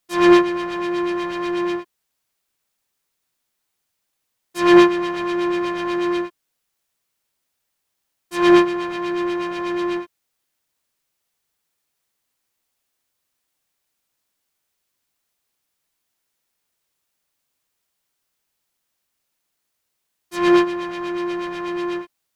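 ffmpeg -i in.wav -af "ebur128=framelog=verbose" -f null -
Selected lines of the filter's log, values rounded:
Integrated loudness:
  I:         -19.5 LUFS
  Threshold: -29.8 LUFS
Loudness range:
  LRA:        10.6 LU
  Threshold: -42.9 LUFS
  LRA low:   -30.6 LUFS
  LRA high:  -20.0 LUFS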